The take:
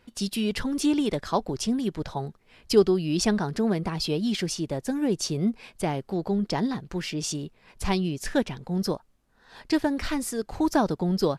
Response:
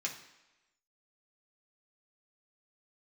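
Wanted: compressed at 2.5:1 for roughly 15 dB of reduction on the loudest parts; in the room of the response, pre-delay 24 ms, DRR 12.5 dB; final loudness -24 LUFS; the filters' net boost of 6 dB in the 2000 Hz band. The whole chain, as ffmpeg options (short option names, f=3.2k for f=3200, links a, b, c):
-filter_complex "[0:a]equalizer=f=2k:t=o:g=7.5,acompressor=threshold=-36dB:ratio=2.5,asplit=2[a][b];[1:a]atrim=start_sample=2205,adelay=24[c];[b][c]afir=irnorm=-1:irlink=0,volume=-15dB[d];[a][d]amix=inputs=2:normalize=0,volume=11.5dB"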